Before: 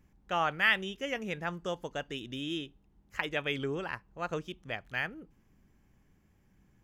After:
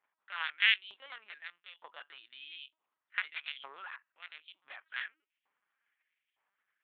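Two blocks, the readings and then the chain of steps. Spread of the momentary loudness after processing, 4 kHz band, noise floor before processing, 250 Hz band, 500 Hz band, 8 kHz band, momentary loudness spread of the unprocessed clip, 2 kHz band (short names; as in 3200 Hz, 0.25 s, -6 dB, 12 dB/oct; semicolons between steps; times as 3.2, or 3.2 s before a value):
23 LU, +1.5 dB, -68 dBFS, under -35 dB, -26.0 dB, under -25 dB, 13 LU, -2.0 dB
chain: added harmonics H 4 -18 dB, 7 -13 dB, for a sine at -12 dBFS; LPC vocoder at 8 kHz pitch kept; LFO high-pass saw up 1.1 Hz 920–3100 Hz; gain -2 dB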